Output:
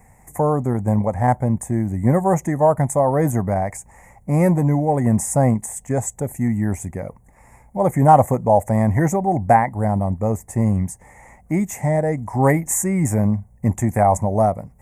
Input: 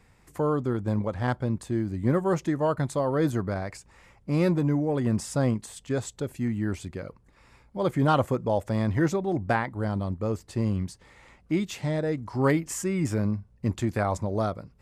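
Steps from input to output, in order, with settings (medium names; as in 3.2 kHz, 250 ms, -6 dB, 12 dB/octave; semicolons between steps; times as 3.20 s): FFT filter 230 Hz 0 dB, 330 Hz -7 dB, 500 Hz -2 dB, 780 Hz +8 dB, 1.4 kHz -12 dB, 2 kHz +1 dB, 3 kHz -22 dB, 4.3 kHz -27 dB, 6.5 kHz +2 dB, 9.7 kHz +8 dB; trim +8.5 dB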